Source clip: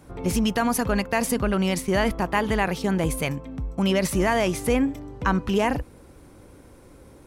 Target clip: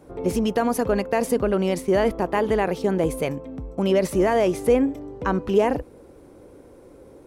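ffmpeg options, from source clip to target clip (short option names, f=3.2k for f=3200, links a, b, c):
-af "equalizer=f=450:w=0.81:g=12,volume=-5.5dB"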